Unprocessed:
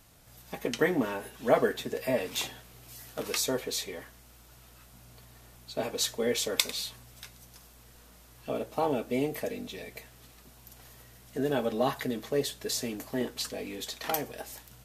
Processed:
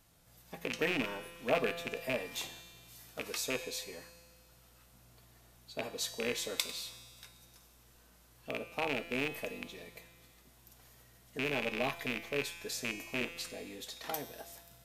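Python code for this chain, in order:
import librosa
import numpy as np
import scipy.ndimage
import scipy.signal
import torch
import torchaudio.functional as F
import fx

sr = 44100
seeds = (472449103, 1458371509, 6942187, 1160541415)

y = fx.rattle_buzz(x, sr, strikes_db=-37.0, level_db=-15.0)
y = fx.comb_fb(y, sr, f0_hz=170.0, decay_s=1.8, harmonics='all', damping=0.0, mix_pct=80)
y = y * 10.0 ** (5.5 / 20.0)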